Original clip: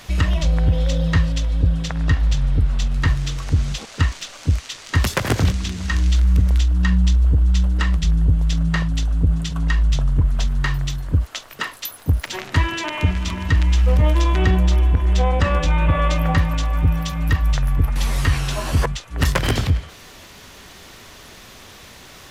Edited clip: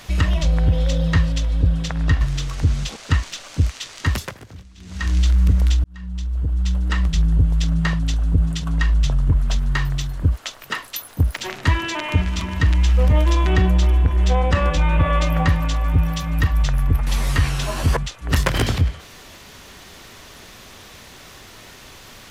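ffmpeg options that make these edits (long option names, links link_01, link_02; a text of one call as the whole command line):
ffmpeg -i in.wav -filter_complex "[0:a]asplit=5[link_01][link_02][link_03][link_04][link_05];[link_01]atrim=end=2.212[link_06];[link_02]atrim=start=3.098:end=5.27,asetpts=PTS-STARTPTS,afade=type=out:start_time=1.782:duration=0.39:silence=0.0749894[link_07];[link_03]atrim=start=5.27:end=5.66,asetpts=PTS-STARTPTS,volume=-22.5dB[link_08];[link_04]atrim=start=5.66:end=6.73,asetpts=PTS-STARTPTS,afade=type=in:duration=0.39:silence=0.0749894,afade=type=out:start_time=1.066:duration=0.004:curve=hsin[link_09];[link_05]atrim=start=6.73,asetpts=PTS-STARTPTS,afade=type=in:duration=1.27[link_10];[link_07][link_08][link_09][link_10]concat=n=4:v=0:a=1[link_11];[link_06][link_11]acrossfade=duration=0.004:curve1=hsin:curve2=hsin" out.wav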